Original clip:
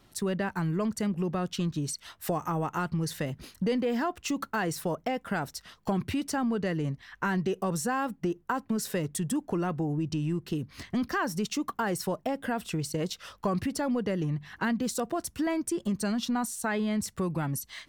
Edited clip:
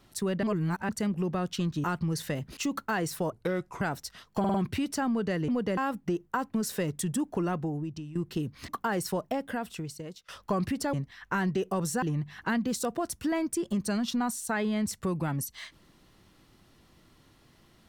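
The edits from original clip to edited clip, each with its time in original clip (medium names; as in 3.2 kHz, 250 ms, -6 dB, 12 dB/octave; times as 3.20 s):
0.43–0.89 s: reverse
1.84–2.75 s: delete
3.48–4.22 s: delete
4.97–5.32 s: speed 71%
5.90 s: stutter 0.05 s, 4 plays
6.84–7.93 s: swap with 13.88–14.17 s
9.68–10.31 s: fade out, to -15.5 dB
10.84–11.63 s: delete
12.25–13.23 s: fade out, to -20.5 dB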